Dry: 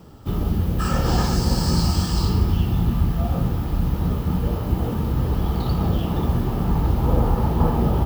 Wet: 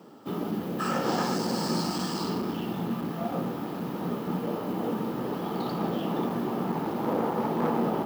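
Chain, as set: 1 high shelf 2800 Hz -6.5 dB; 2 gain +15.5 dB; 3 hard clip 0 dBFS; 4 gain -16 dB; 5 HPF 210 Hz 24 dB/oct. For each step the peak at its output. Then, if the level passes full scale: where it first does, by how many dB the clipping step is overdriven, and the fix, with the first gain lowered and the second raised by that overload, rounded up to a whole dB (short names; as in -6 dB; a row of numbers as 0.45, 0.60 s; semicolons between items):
-5.5, +10.0, 0.0, -16.0, -15.0 dBFS; step 2, 10.0 dB; step 2 +5.5 dB, step 4 -6 dB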